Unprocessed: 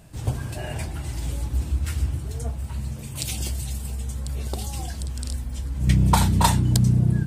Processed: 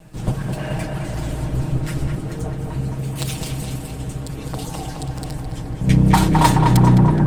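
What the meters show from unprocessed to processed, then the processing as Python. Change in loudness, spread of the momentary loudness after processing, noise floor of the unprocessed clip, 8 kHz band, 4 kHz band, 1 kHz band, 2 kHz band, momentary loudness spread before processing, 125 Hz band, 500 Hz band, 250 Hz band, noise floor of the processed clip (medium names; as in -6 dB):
+5.0 dB, 15 LU, -35 dBFS, -0.5 dB, +2.0 dB, +7.0 dB, +6.5 dB, 12 LU, +4.5 dB, +10.0 dB, +8.5 dB, -31 dBFS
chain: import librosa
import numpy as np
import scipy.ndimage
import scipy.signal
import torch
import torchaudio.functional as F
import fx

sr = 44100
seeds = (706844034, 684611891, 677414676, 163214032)

y = fx.lower_of_two(x, sr, delay_ms=6.4)
y = fx.high_shelf(y, sr, hz=3500.0, db=-7.0)
y = fx.echo_tape(y, sr, ms=212, feedback_pct=82, wet_db=-3, lp_hz=2300.0, drive_db=5.0, wow_cents=15)
y = y * librosa.db_to_amplitude(6.0)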